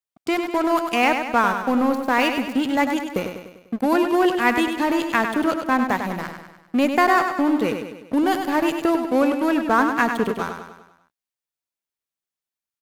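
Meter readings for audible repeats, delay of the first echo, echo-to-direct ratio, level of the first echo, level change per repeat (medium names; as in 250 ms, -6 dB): 5, 99 ms, -5.5 dB, -7.0 dB, -5.5 dB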